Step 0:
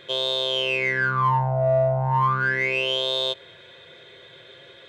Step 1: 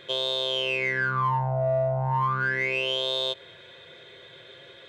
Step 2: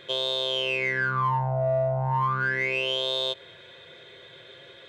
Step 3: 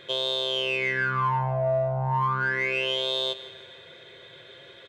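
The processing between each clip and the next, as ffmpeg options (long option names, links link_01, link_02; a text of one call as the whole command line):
ffmpeg -i in.wav -af "acompressor=threshold=-23dB:ratio=2,volume=-1dB" out.wav
ffmpeg -i in.wav -af anull out.wav
ffmpeg -i in.wav -af "aecho=1:1:158|316|474|632|790:0.158|0.0808|0.0412|0.021|0.0107" out.wav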